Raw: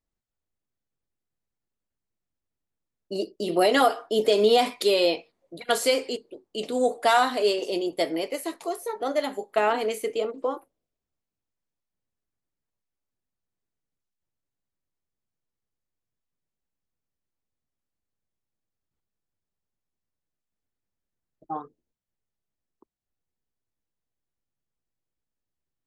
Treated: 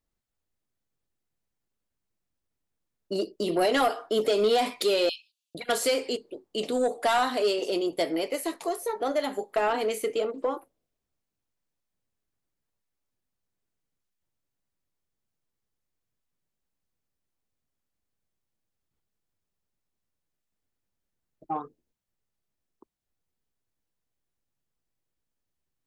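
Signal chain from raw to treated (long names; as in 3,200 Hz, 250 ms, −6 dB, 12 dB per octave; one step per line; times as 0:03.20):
0:05.09–0:05.55: Butterworth high-pass 2,600 Hz 96 dB per octave
in parallel at +1 dB: downward compressor, threshold −28 dBFS, peak gain reduction 12.5 dB
on the sum: soft clipping −12 dBFS, distortion −17 dB
level −4 dB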